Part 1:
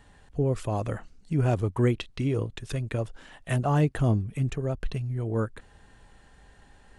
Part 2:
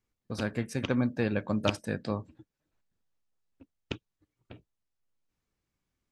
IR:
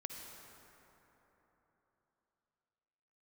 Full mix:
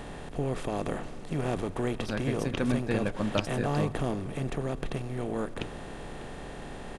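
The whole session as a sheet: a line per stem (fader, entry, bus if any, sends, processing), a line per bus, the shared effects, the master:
-10.0 dB, 0.00 s, send -8.5 dB, per-bin compression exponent 0.4; bell 110 Hz -13.5 dB 0.27 oct
-1.0 dB, 1.70 s, no send, dry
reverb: on, RT60 3.8 s, pre-delay 47 ms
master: dry

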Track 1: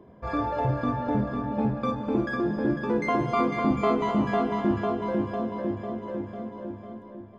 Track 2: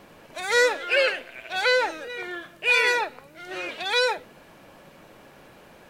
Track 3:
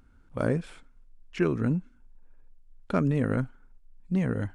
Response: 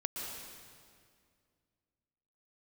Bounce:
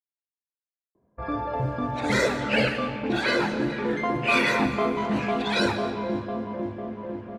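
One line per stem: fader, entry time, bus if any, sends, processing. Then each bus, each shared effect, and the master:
-3.5 dB, 0.95 s, send -10.5 dB, dry
-6.5 dB, 1.60 s, send -7 dB, whisperiser
off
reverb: on, RT60 2.1 s, pre-delay 0.11 s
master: low-pass opened by the level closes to 1500 Hz, open at -20 dBFS; gate -42 dBFS, range -15 dB

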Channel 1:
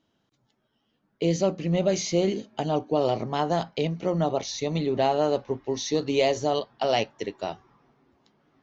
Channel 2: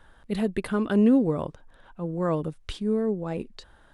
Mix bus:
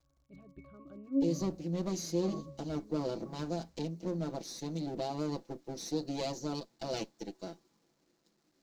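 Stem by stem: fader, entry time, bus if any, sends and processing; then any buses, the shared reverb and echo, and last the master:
-17.5 dB, 0.00 s, no send, minimum comb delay 6 ms; EQ curve 120 Hz 0 dB, 230 Hz +13 dB, 360 Hz +11 dB, 1200 Hz -3 dB, 5600 Hz +2 dB; requantised 10-bit, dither none
-1.0 dB, 0.00 s, no send, octave resonator C#, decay 0.44 s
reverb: off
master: band shelf 5400 Hz +8.5 dB 1.1 oct

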